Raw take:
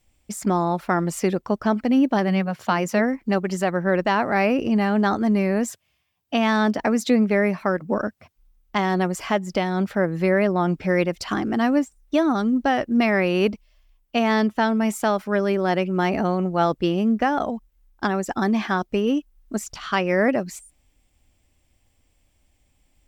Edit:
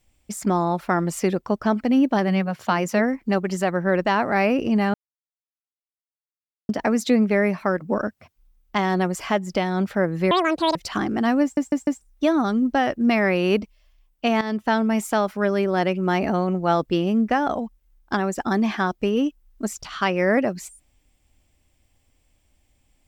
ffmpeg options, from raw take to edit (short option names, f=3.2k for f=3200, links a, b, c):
-filter_complex "[0:a]asplit=9[a][b][c][d][e][f][g][h][i];[a]atrim=end=4.94,asetpts=PTS-STARTPTS,afade=t=out:st=4.936:d=0.004:c=hsin[j];[b]atrim=start=4.94:end=6.69,asetpts=PTS-STARTPTS,volume=0[k];[c]atrim=start=6.69:end=10.314,asetpts=PTS-STARTPTS,afade=t=in:d=0.004:c=hsin[l];[d]atrim=start=10.31:end=11.11,asetpts=PTS-STARTPTS,asetrate=79821,aresample=44100[m];[e]atrim=start=11.106:end=11.932[n];[f]atrim=start=11.778:end=11.932[o];[g]atrim=start=11.778:end=11.932[p];[h]atrim=start=11.778:end=14.32,asetpts=PTS-STARTPTS,afade=t=out:st=2.538:d=0.004:c=hsin:silence=0.223872[q];[i]atrim=start=14.32,asetpts=PTS-STARTPTS,afade=t=in:d=0.27:silence=0.223872[r];[j][k][l]concat=n=3:v=0:a=1[s];[s][m]acrossfade=d=0.004:c1=hsin:c2=hsin[t];[t][n]acrossfade=d=0.004:c1=hsin:c2=hsin[u];[u][o]acrossfade=d=0.004:c1=hsin:c2=hsin[v];[v][p]acrossfade=d=0.004:c1=hsin:c2=hsin[w];[q][r]concat=n=2:v=0:a=1[x];[w][x]acrossfade=d=0.004:c1=hsin:c2=hsin"